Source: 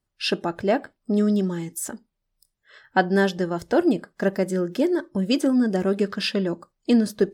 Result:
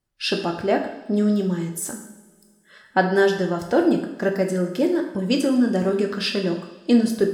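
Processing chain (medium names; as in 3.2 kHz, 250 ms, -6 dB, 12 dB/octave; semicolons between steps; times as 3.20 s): two-slope reverb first 0.72 s, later 2.4 s, from -19 dB, DRR 3 dB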